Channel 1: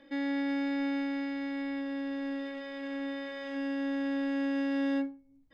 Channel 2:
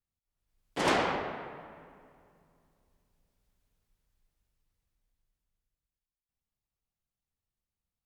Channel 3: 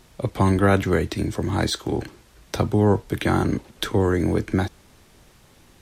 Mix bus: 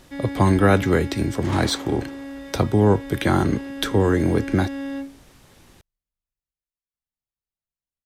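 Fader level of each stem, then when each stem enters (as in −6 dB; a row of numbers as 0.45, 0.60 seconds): 0.0, −7.0, +1.5 decibels; 0.00, 0.65, 0.00 seconds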